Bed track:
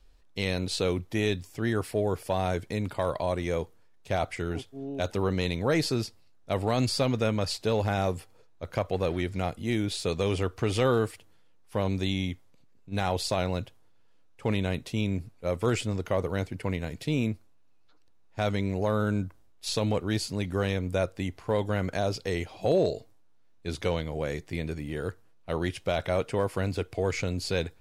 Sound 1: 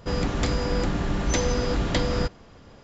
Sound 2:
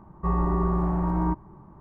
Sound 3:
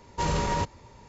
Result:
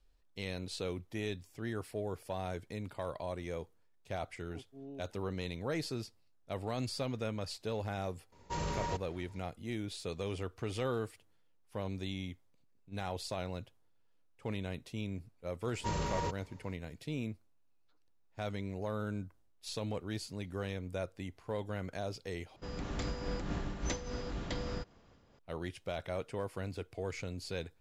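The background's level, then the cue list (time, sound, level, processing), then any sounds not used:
bed track -11 dB
8.32 s: add 3 -10 dB
15.66 s: add 3 -9 dB
22.56 s: replace with 1 -9.5 dB + random flutter of the level
not used: 2

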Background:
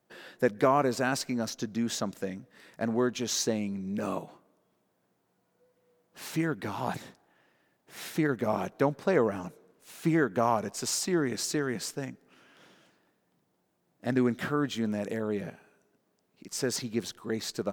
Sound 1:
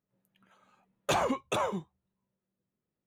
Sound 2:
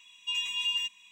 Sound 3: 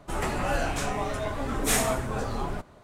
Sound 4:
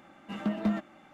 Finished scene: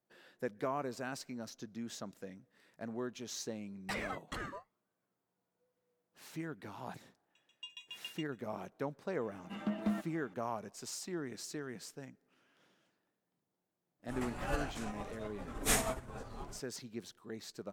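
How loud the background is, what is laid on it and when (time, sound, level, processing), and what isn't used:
background -13 dB
2.80 s: add 1 -9 dB + ring modulator with a swept carrier 1 kHz, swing 35%, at 0.94 Hz
7.35 s: add 2 -10 dB + sawtooth tremolo in dB decaying 7.2 Hz, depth 34 dB
9.21 s: add 4 -6 dB
13.99 s: add 3 -4.5 dB + upward expansion 2.5:1, over -41 dBFS

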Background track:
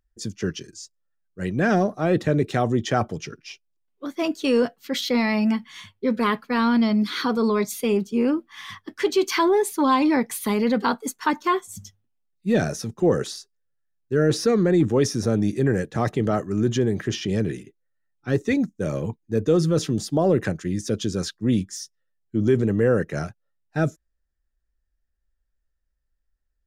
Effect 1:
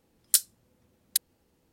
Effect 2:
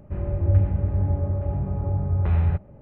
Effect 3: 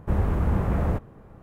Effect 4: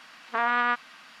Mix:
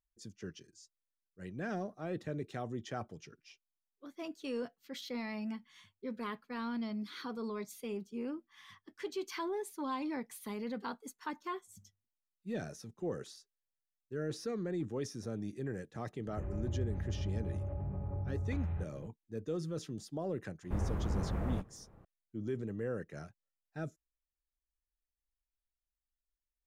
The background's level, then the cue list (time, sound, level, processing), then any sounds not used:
background track -18.5 dB
16.27 s: add 2 -4.5 dB + compression 3:1, threshold -33 dBFS
20.63 s: add 3 -11.5 dB
not used: 1, 4

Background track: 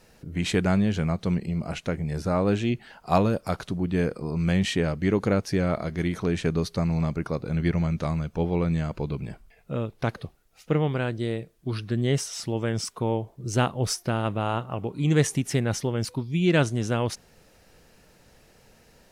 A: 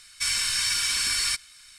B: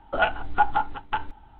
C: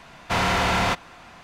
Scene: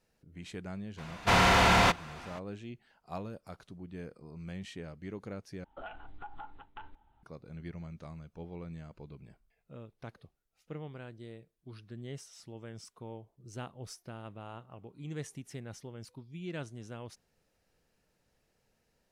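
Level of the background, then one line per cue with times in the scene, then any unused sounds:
background track -19 dB
0.97 s: add C -1 dB, fades 0.02 s
5.64 s: replace with B -16.5 dB + compression, threshold -23 dBFS
not used: A

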